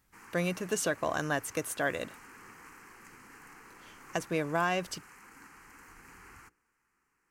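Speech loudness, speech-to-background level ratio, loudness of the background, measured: -32.5 LUFS, 20.0 dB, -52.5 LUFS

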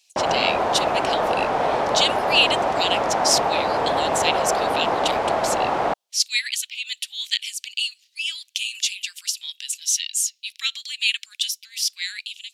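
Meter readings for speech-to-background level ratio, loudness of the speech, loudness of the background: -2.5 dB, -24.5 LUFS, -22.0 LUFS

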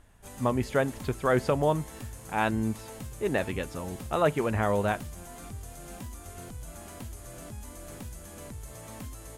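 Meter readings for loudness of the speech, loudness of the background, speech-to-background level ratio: -29.0 LUFS, -43.0 LUFS, 14.0 dB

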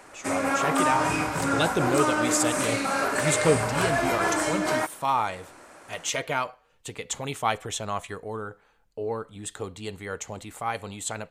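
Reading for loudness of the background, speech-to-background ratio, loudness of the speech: -25.5 LUFS, -4.5 dB, -30.0 LUFS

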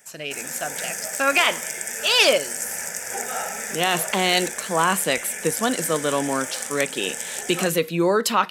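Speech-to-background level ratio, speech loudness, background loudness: 6.5 dB, -22.0 LUFS, -28.5 LUFS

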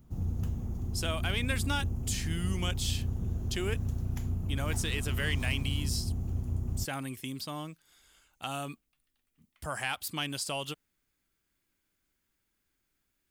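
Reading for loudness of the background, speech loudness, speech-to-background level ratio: -35.0 LUFS, -36.0 LUFS, -1.0 dB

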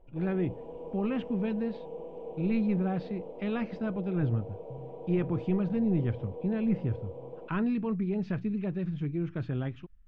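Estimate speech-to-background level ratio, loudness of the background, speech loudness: 11.0 dB, -43.0 LUFS, -32.0 LUFS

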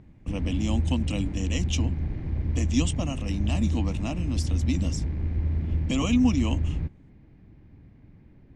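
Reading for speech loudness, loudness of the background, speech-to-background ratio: -29.5 LUFS, -29.0 LUFS, -0.5 dB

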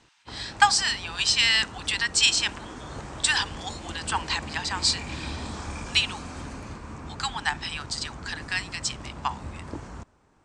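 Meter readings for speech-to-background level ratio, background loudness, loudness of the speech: 14.0 dB, -39.0 LUFS, -25.0 LUFS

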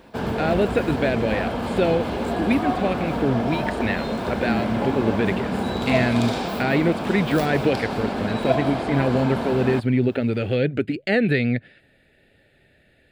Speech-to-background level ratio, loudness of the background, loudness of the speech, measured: 2.5 dB, -26.0 LUFS, -23.5 LUFS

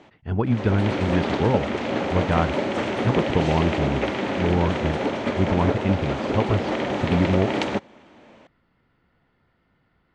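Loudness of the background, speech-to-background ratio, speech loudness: -25.5 LUFS, 0.5 dB, -25.0 LUFS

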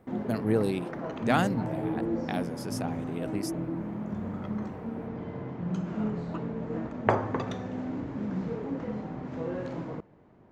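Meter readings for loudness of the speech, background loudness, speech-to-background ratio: -32.5 LUFS, -34.0 LUFS, 1.5 dB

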